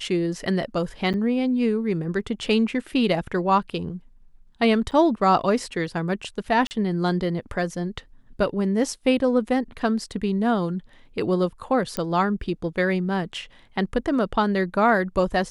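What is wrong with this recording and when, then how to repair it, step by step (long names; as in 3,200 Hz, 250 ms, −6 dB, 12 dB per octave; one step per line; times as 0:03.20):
0:01.13–0:01.14: drop-out 8.9 ms
0:04.91–0:04.92: drop-out 8.1 ms
0:06.67–0:06.71: drop-out 39 ms
0:11.97: click −10 dBFS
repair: click removal
repair the gap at 0:01.13, 8.9 ms
repair the gap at 0:04.91, 8.1 ms
repair the gap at 0:06.67, 39 ms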